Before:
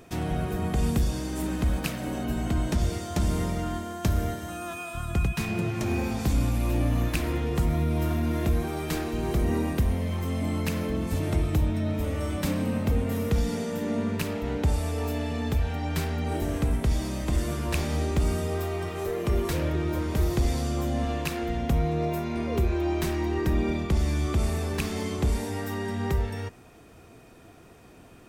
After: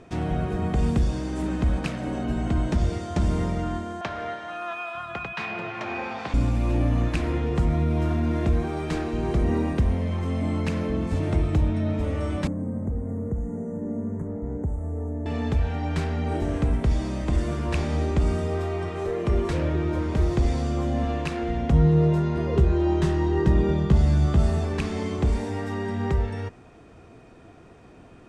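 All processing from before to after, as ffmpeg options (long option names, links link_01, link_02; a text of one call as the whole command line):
ffmpeg -i in.wav -filter_complex "[0:a]asettb=1/sr,asplit=3[link_01][link_02][link_03];[link_01]atrim=end=4.014[link_04];[link_02]atrim=start=4.01:end=6.34,asetpts=PTS-STARTPTS,afade=type=in:duration=0.004:curve=qsin,afade=type=out:start_time=2.326:duration=0.004:curve=qsin,highpass=130,acrossover=split=590 4300:gain=0.126 1 0.0891[link_05][link_06][link_07];[link_05][link_06][link_07]amix=inputs=3:normalize=0,acontrast=27[link_08];[link_03]atrim=start=6.336[link_09];[link_04][link_08]acrossfade=duration=0.004:curve1=hsin:curve2=qsin[link_10];[link_10][link_09]acrossfade=duration=0.004:curve1=qsin:curve2=hsin,asettb=1/sr,asplit=3[link_11][link_12][link_13];[link_11]atrim=end=12.474[link_14];[link_12]atrim=start=12.47:end=15.26,asetpts=PTS-STARTPTS,afade=type=in:duration=0.004:curve=qsin,afade=type=out:start_time=2.786:duration=0.004:curve=qsin,asuperstop=centerf=3700:order=20:qfactor=0.92,acrossover=split=640|1400|2800[link_15][link_16][link_17][link_18];[link_15]acompressor=threshold=-28dB:ratio=3[link_19];[link_16]acompressor=threshold=-45dB:ratio=3[link_20];[link_17]acompressor=threshold=-54dB:ratio=3[link_21];[link_18]acompressor=threshold=-59dB:ratio=3[link_22];[link_19][link_20][link_21][link_22]amix=inputs=4:normalize=0,equalizer=frequency=1900:width_type=o:width=2.4:gain=-15[link_23];[link_13]atrim=start=15.256[link_24];[link_14][link_23]acrossfade=duration=0.004:curve1=hsin:curve2=qsin[link_25];[link_25][link_24]acrossfade=duration=0.004:curve1=qsin:curve2=hsin,asettb=1/sr,asplit=3[link_26][link_27][link_28];[link_26]atrim=end=21.724[link_29];[link_27]atrim=start=21.72:end=24.65,asetpts=PTS-STARTPTS,afade=type=in:duration=0.004:curve=qsin,afade=type=out:start_time=2.926:duration=0.004:curve=qsin,equalizer=frequency=160:width=3.9:gain=11,bandreject=frequency=2300:width=6.2,asplit=2[link_30][link_31];[link_31]adelay=15,volume=-5dB[link_32];[link_30][link_32]amix=inputs=2:normalize=0,atrim=end_sample=129213[link_33];[link_28]atrim=start=24.646[link_34];[link_29][link_33]acrossfade=duration=0.004:curve1=hsin:curve2=qsin[link_35];[link_35][link_34]acrossfade=duration=0.004:curve1=qsin:curve2=hsin,lowpass=frequency=9000:width=0.5412,lowpass=frequency=9000:width=1.3066,highshelf=frequency=3400:gain=-9.5,volume=2.5dB" out.wav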